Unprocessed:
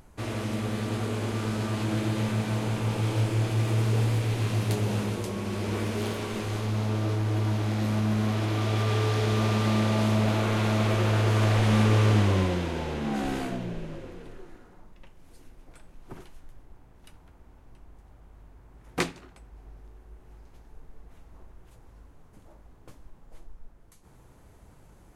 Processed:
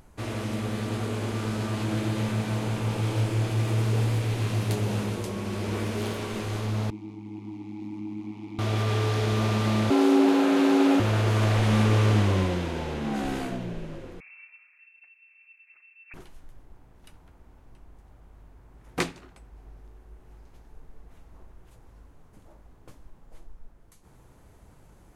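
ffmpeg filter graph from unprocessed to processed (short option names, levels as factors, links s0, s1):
-filter_complex "[0:a]asettb=1/sr,asplit=3[s0][s1][s2];[s0]atrim=end=6.904[s3];[s1]atrim=start=6.9:end=8.59,asetpts=PTS-STARTPTS,afade=t=in:d=0.004:c=qsin,afade=t=out:st=1.686:d=0.004:c=qsin,bass=f=250:g=10,treble=f=4000:g=13,tremolo=f=100:d=0.857,asplit=3[s4][s5][s6];[s4]bandpass=f=300:t=q:w=8,volume=1[s7];[s5]bandpass=f=870:t=q:w=8,volume=0.501[s8];[s6]bandpass=f=2240:t=q:w=8,volume=0.355[s9];[s7][s8][s9]amix=inputs=3:normalize=0[s10];[s2]atrim=start=8.586[s11];[s3][s10]acrossfade=d=0.004:c1=hsin:c2=qsin[s12];[s12][s11]acrossfade=d=0.004:c1=qsin:c2=hsin,asettb=1/sr,asplit=3[s13][s14][s15];[s13]atrim=end=9.904[s16];[s14]atrim=start=9.9:end=11,asetpts=PTS-STARTPTS,afade=t=in:d=0.004:c=qsin,afade=t=out:st=1.096:d=0.004:c=qsin,equalizer=f=76:t=o:w=2.7:g=6.5,afreqshift=170[s17];[s15]atrim=start=10.996[s18];[s16][s17]acrossfade=d=0.004:c1=hsin:c2=qsin[s19];[s19][s18]acrossfade=d=0.004:c1=qsin:c2=hsin,asettb=1/sr,asplit=3[s20][s21][s22];[s20]atrim=end=14.204[s23];[s21]atrim=start=14.2:end=16.14,asetpts=PTS-STARTPTS,afade=t=in:d=0.004:c=qsin,afade=t=out:st=1.936:d=0.004:c=qsin,lowshelf=f=420:g=-8.5,adynamicsmooth=sensitivity=7.5:basefreq=680,lowpass=f=2300:t=q:w=0.5098,lowpass=f=2300:t=q:w=0.6013,lowpass=f=2300:t=q:w=0.9,lowpass=f=2300:t=q:w=2.563,afreqshift=-2700[s24];[s22]atrim=start=16.136[s25];[s23][s24]acrossfade=d=0.004:c1=hsin:c2=qsin[s26];[s26][s25]acrossfade=d=0.004:c1=qsin:c2=hsin"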